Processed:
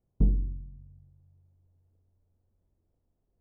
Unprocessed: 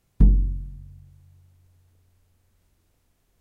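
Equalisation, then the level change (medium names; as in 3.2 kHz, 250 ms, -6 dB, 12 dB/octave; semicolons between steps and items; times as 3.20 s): Chebyshev low-pass 590 Hz, order 2; dynamic bell 570 Hz, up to +5 dB, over -45 dBFS, Q 1.1; -7.0 dB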